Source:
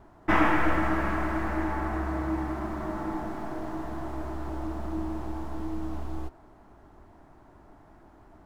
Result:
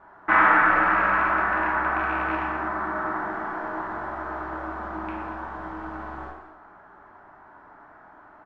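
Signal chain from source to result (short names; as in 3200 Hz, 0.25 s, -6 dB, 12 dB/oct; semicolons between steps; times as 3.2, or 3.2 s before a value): rattling part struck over -29 dBFS, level -25 dBFS; synth low-pass 1400 Hz, resonance Q 2.4; tilt +4 dB/oct; on a send: echo 0.235 s -17 dB; on the sum: non-linear reverb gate 0.29 s falling, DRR -3.5 dB; in parallel at -3 dB: limiter -14 dBFS, peak gain reduction 10 dB; on the sum: gain -4.5 dB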